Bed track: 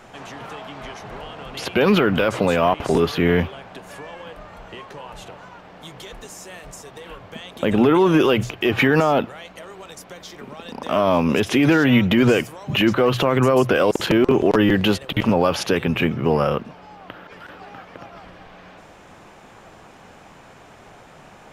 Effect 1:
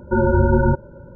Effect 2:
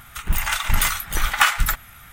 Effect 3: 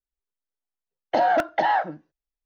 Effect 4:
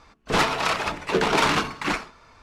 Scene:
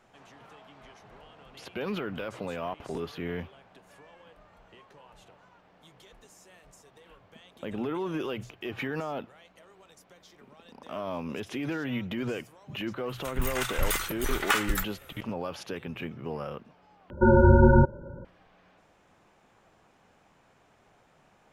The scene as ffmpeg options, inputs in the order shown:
ffmpeg -i bed.wav -i cue0.wav -i cue1.wav -filter_complex "[0:a]volume=-17dB,asplit=2[link_01][link_02];[link_01]atrim=end=17.104[link_03];[1:a]atrim=end=1.15,asetpts=PTS-STARTPTS,volume=-1.5dB[link_04];[link_02]atrim=start=18.246[link_05];[2:a]atrim=end=2.12,asetpts=PTS-STARTPTS,volume=-9dB,afade=type=in:duration=0.004:curve=hsin,afade=type=out:start_time=2.116:duration=0.004:curve=hsin,adelay=13090[link_06];[link_03][link_04]acrossfade=duration=0.004:curve1=hsin:curve2=hsin[link_07];[link_07][link_05]acrossfade=duration=0.004:curve1=hsin:curve2=hsin[link_08];[link_08][link_06]amix=inputs=2:normalize=0" out.wav

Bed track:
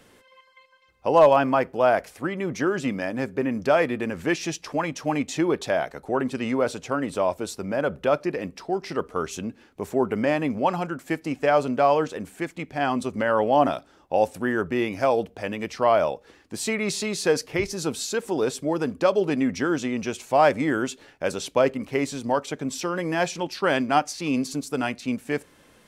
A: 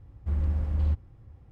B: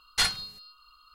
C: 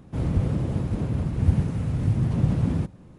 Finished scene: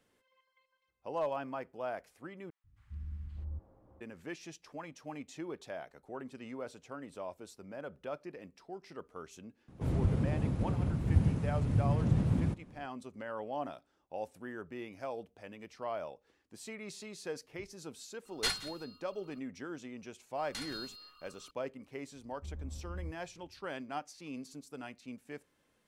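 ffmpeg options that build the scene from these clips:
ffmpeg -i bed.wav -i cue0.wav -i cue1.wav -i cue2.wav -filter_complex "[1:a]asplit=2[link_01][link_02];[2:a]asplit=2[link_03][link_04];[0:a]volume=-19dB[link_05];[link_01]acrossover=split=270|1200[link_06][link_07][link_08];[link_06]adelay=140[link_09];[link_07]adelay=600[link_10];[link_09][link_10][link_08]amix=inputs=3:normalize=0[link_11];[link_03]aecho=1:1:172:0.126[link_12];[link_04]acompressor=threshold=-37dB:ratio=6:attack=3.2:release=140:knee=1:detection=peak[link_13];[link_02]lowpass=1000[link_14];[link_05]asplit=2[link_15][link_16];[link_15]atrim=end=2.504[link_17];[link_11]atrim=end=1.51,asetpts=PTS-STARTPTS,volume=-15.5dB[link_18];[link_16]atrim=start=4.006[link_19];[3:a]atrim=end=3.18,asetpts=PTS-STARTPTS,volume=-6.5dB,afade=type=in:duration=0.004:curve=hsin,afade=type=out:start_time=3.176:duration=0.004:curve=hsin,adelay=9680[link_20];[link_12]atrim=end=1.14,asetpts=PTS-STARTPTS,volume=-8dB,afade=type=in:duration=0.004:curve=hsin,afade=type=out:start_time=1.136:duration=0.004:curve=hsin,adelay=18250[link_21];[link_13]atrim=end=1.14,asetpts=PTS-STARTPTS,volume=-3dB,afade=type=in:duration=0.004:curve=hsin,afade=type=out:start_time=1.136:duration=0.004:curve=hsin,adelay=20370[link_22];[link_14]atrim=end=1.51,asetpts=PTS-STARTPTS,volume=-16.5dB,afade=type=in:duration=0.004:curve=hsin,afade=type=out:start_time=1.506:duration=0.004:curve=hsin,adelay=22160[link_23];[link_17][link_18]acrossfade=duration=0.004:curve1=hsin:curve2=hsin[link_24];[link_24][link_19]acrossfade=duration=0.004:curve1=hsin:curve2=hsin[link_25];[link_25][link_20][link_21][link_22][link_23]amix=inputs=5:normalize=0" out.wav

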